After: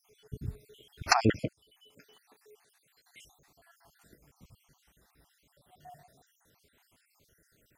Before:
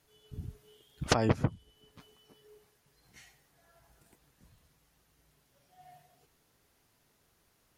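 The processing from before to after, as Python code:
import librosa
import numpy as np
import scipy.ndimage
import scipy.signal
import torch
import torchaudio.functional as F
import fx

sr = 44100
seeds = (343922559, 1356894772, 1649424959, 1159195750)

y = fx.spec_dropout(x, sr, seeds[0], share_pct=61)
y = fx.highpass(y, sr, hz=660.0, slope=6, at=(1.36, 3.21))
y = F.gain(torch.from_numpy(y), 6.5).numpy()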